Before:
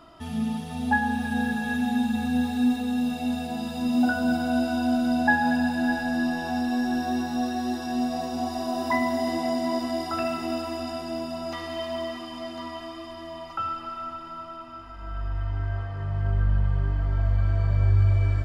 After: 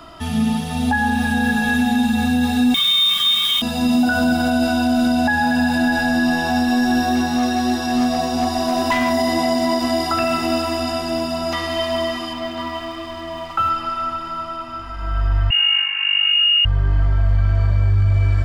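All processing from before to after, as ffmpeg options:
-filter_complex "[0:a]asettb=1/sr,asplit=3[a][b][c];[a]atrim=end=2.744[d];[b]atrim=start=2.74:end=3.62,asetpts=PTS-STARTPTS,afade=t=in:d=0.004:c=qsin,afade=t=out:st=0.876:d=0.004:c=qsin,equalizer=f=1.5k:t=o:w=1.7:g=6.5,lowpass=f=3.3k:t=q:w=0.5098,lowpass=f=3.3k:t=q:w=0.6013,lowpass=f=3.3k:t=q:w=0.9,lowpass=f=3.3k:t=q:w=2.563,afreqshift=-3900,acrusher=bits=5:mix=0:aa=0.5[e];[c]atrim=start=3.616[f];[d][e]acrossfade=d=0.004:c1=hsin:c2=qsin[g];[g][f]acrossfade=d=0.004:c1=qsin:c2=hsin,asettb=1/sr,asplit=3[h][i][j];[h]atrim=end=7.154[k];[i]atrim=start=7.15:end=9.11,asetpts=PTS-STARTPTS,afade=t=in:d=0.004:c=qsin,afade=t=out:st=1.956:d=0.004:c=qsin,highshelf=f=11k:g=-4,volume=22dB,asoftclip=hard,volume=-22dB[l];[j]atrim=start=9.106[m];[k][l]acrossfade=d=0.004:c1=hsin:c2=qsin[n];[n][m]acrossfade=d=0.004:c1=qsin:c2=hsin,asettb=1/sr,asplit=3[o][p][q];[o]atrim=end=12.334[r];[p]atrim=start=12.33:end=13.7,asetpts=PTS-STARTPTS,afade=t=in:d=0.004:c=qsin,afade=t=out:st=1.366:d=0.004:c=qsin,lowpass=3.9k,aeval=exprs='sgn(val(0))*max(abs(val(0))-0.00158,0)':c=same[s];[q]atrim=start=13.696[t];[r][s]acrossfade=d=0.004:c1=hsin:c2=qsin[u];[u][t]acrossfade=d=0.004:c1=qsin:c2=hsin,asettb=1/sr,asplit=3[v][w][x];[v]atrim=end=15.504[y];[w]atrim=start=15.5:end=16.65,asetpts=PTS-STARTPTS,afade=t=in:d=0.004:c=qsin,afade=t=out:st=1.146:d=0.004:c=qsin,aecho=1:1:4.8:0.45,atrim=end_sample=50715,lowpass=f=2.5k:t=q:w=0.5098,lowpass=f=2.5k:t=q:w=0.6013,lowpass=f=2.5k:t=q:w=0.9,lowpass=f=2.5k:t=q:w=2.563,afreqshift=-2900[z];[x]atrim=start=16.646[aa];[y][z]acrossfade=d=0.004:c1=hsin:c2=qsin[ab];[ab][aa]acrossfade=d=0.004:c1=qsin:c2=hsin,equalizer=f=360:w=0.39:g=-4.5,acrossover=split=180|3000[ac][ad][ae];[ad]acompressor=threshold=-24dB:ratio=6[af];[ac][af][ae]amix=inputs=3:normalize=0,alimiter=level_in=21.5dB:limit=-1dB:release=50:level=0:latency=1,volume=-8.5dB"

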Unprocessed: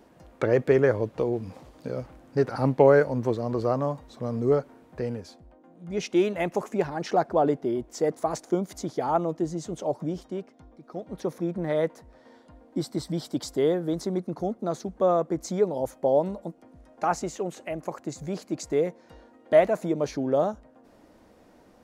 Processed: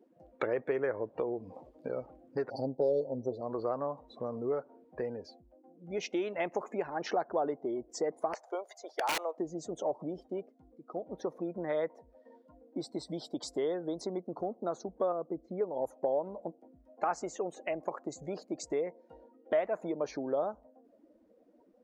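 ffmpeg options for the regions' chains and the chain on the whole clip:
-filter_complex "[0:a]asettb=1/sr,asplit=3[a][b][c];[a]atrim=end=2.504[d];[b]atrim=start=2.5:end=3.41,asetpts=PTS-STARTPTS,afade=t=in:d=0.004:c=qsin,afade=t=out:st=0.906:d=0.004:c=qsin,aecho=1:1:7.5:0.88,atrim=end_sample=40131,asoftclip=type=hard:threshold=-8dB,asuperstop=centerf=1700:order=8:qfactor=0.52[e];[c]atrim=start=3.406[f];[d][e]acrossfade=d=0.004:c1=hsin:c2=qsin[g];[g][f]acrossfade=d=0.004:c1=qsin:c2=hsin,asettb=1/sr,asplit=3[h][i][j];[h]atrim=end=8.334[k];[i]atrim=start=8.33:end=9.38,asetpts=PTS-STARTPTS,afade=t=in:d=0.004:c=qsin,afade=t=out:st=1.046:d=0.004:c=qsin,acrossover=split=3700[l][m];[m]acompressor=threshold=-45dB:ratio=4:attack=1:release=60[n];[l][n]amix=inputs=2:normalize=0,highpass=f=530:w=0.5412,highpass=f=530:w=1.3066,aeval=exprs='(mod(11.9*val(0)+1,2)-1)/11.9':c=same[o];[j]atrim=start=9.376[p];[k][o]acrossfade=d=0.004:c1=hsin:c2=qsin[q];[q][p]acrossfade=d=0.004:c1=qsin:c2=hsin,asettb=1/sr,asplit=3[r][s][t];[r]atrim=end=15.124[u];[s]atrim=start=15.12:end=15.61,asetpts=PTS-STARTPTS,afade=t=in:d=0.004:c=qsin,afade=t=out:st=0.486:d=0.004:c=qsin,lowpass=1.9k,equalizer=f=980:w=0.66:g=-7.5[v];[t]atrim=start=15.606[w];[u][v]acrossfade=d=0.004:c1=hsin:c2=qsin[x];[x][w]acrossfade=d=0.004:c1=qsin:c2=hsin,afftdn=nr=23:nf=-46,acompressor=threshold=-31dB:ratio=3,bass=f=250:g=-14,treble=f=4k:g=-4,volume=1.5dB"

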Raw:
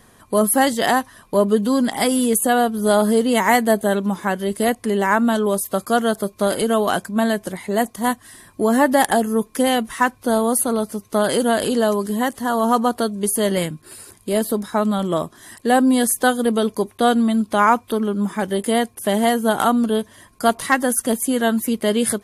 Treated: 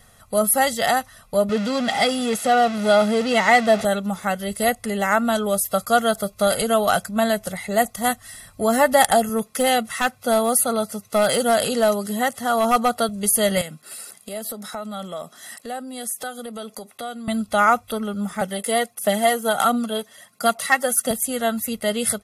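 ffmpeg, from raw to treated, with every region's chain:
-filter_complex "[0:a]asettb=1/sr,asplit=3[a][b][c];[a]atrim=end=1.494[d];[b]atrim=start=1.49:end=3.85,asetpts=PTS-STARTPTS,afade=t=in:d=0.004:c=qsin,afade=t=out:st=2.356:d=0.004:c=qsin,aeval=exprs='val(0)+0.5*0.1*sgn(val(0))':c=same,highpass=130,lowpass=5.2k[e];[c]atrim=start=3.846[f];[d][e]acrossfade=d=0.004:c1=hsin:c2=qsin[g];[g][f]acrossfade=d=0.004:c1=qsin:c2=hsin,asettb=1/sr,asplit=3[h][i][j];[h]atrim=end=9.294[k];[i]atrim=start=9.29:end=13.09,asetpts=PTS-STARTPTS,afade=t=in:d=0.004:c=qsin,afade=t=out:st=3.796:d=0.004:c=qsin,highpass=120,highshelf=f=12k:g=-3.5,volume=10.5dB,asoftclip=hard,volume=-10.5dB[l];[j]atrim=start=13.086[m];[k][l]acrossfade=d=0.004:c1=hsin:c2=qsin[n];[n][m]acrossfade=d=0.004:c1=qsin:c2=hsin,asettb=1/sr,asplit=3[o][p][q];[o]atrim=end=13.614[r];[p]atrim=start=13.61:end=17.28,asetpts=PTS-STARTPTS,afade=t=in:d=0.004:c=qsin,afade=t=out:st=3.666:d=0.004:c=qsin,highpass=f=190:w=0.5412,highpass=f=190:w=1.3066,acompressor=threshold=-28dB:ratio=4:attack=3.2:release=140:knee=1:detection=peak[s];[q]atrim=start=17.276[t];[r][s]acrossfade=d=0.004:c1=hsin:c2=qsin[u];[u][t]acrossfade=d=0.004:c1=qsin:c2=hsin,asettb=1/sr,asplit=3[v][w][x];[v]atrim=end=18.414[y];[w]atrim=start=18.41:end=21.11,asetpts=PTS-STARTPTS,afade=t=in:d=0.004:c=qsin,afade=t=out:st=2.696:d=0.004:c=qsin,highpass=f=170:w=0.5412,highpass=f=170:w=1.3066,aphaser=in_gain=1:out_gain=1:delay=2.8:decay=0.37:speed=1.5:type=triangular[z];[x]atrim=start=21.106[aa];[y][z]acrossfade=d=0.004:c1=hsin:c2=qsin[ab];[ab][aa]acrossfade=d=0.004:c1=qsin:c2=hsin,equalizer=f=330:w=0.33:g=-5,aecho=1:1:1.5:0.72,dynaudnorm=f=550:g=17:m=11.5dB,volume=-1dB"

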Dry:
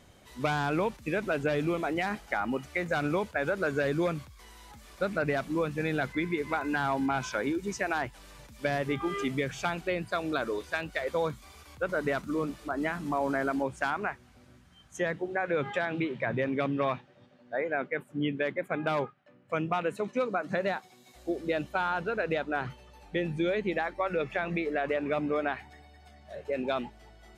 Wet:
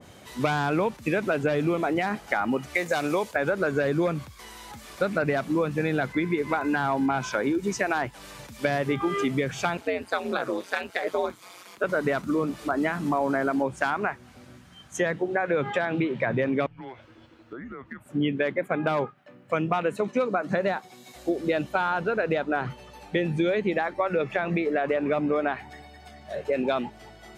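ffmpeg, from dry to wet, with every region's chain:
-filter_complex "[0:a]asettb=1/sr,asplit=3[a][b][c];[a]atrim=end=2.754[d];[b]atrim=start=2.75:end=3.36,asetpts=PTS-STARTPTS,afade=t=in:d=0.004:c=qsin,afade=t=out:st=0.606:d=0.004:c=qsin,bass=f=250:g=-10,treble=f=4k:g=8,bandreject=f=1.4k:w=7.5[e];[c]atrim=start=3.356[f];[d][e]acrossfade=d=0.004:c1=hsin:c2=qsin[g];[g][f]acrossfade=d=0.004:c1=qsin:c2=hsin,asettb=1/sr,asplit=3[h][i][j];[h]atrim=end=9.774[k];[i]atrim=start=9.77:end=11.84,asetpts=PTS-STARTPTS,afade=t=in:d=0.004:c=qsin,afade=t=out:st=2.066:d=0.004:c=qsin,highpass=300,aeval=exprs='val(0)*sin(2*PI*92*n/s)':c=same[l];[j]atrim=start=11.836[m];[k][l]acrossfade=d=0.004:c1=hsin:c2=qsin[n];[n][m]acrossfade=d=0.004:c1=qsin:c2=hsin,asettb=1/sr,asplit=3[o][p][q];[o]atrim=end=16.664[r];[p]atrim=start=16.66:end=18.06,asetpts=PTS-STARTPTS,afade=t=in:d=0.004:c=qsin,afade=t=out:st=1.396:d=0.004:c=qsin,highpass=f=170:w=0.5412,highpass=f=170:w=1.3066,acompressor=threshold=-44dB:ratio=10:attack=3.2:release=140:knee=1:detection=peak,afreqshift=-260[s];[q]atrim=start=18.056[t];[r][s]acrossfade=d=0.004:c1=hsin:c2=qsin[u];[u][t]acrossfade=d=0.004:c1=qsin:c2=hsin,highpass=90,acompressor=threshold=-33dB:ratio=2,adynamicequalizer=threshold=0.00501:dfrequency=1600:dqfactor=0.7:tfrequency=1600:tqfactor=0.7:attack=5:release=100:ratio=0.375:range=2:mode=cutabove:tftype=highshelf,volume=9dB"

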